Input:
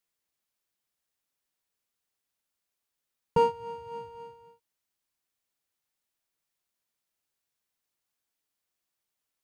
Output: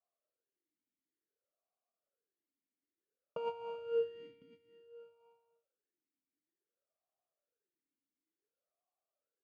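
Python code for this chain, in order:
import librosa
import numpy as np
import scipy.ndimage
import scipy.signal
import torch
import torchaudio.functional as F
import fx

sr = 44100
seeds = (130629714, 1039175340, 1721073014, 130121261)

y = fx.env_lowpass(x, sr, base_hz=870.0, full_db=-38.0)
y = fx.over_compress(y, sr, threshold_db=-28.0, ratio=-1.0)
y = y + 10.0 ** (-19.0 / 20.0) * np.pad(y, (int(1054 * sr / 1000.0), 0))[:len(y)]
y = fx.vowel_sweep(y, sr, vowels='a-i', hz=0.56)
y = y * 10.0 ** (7.5 / 20.0)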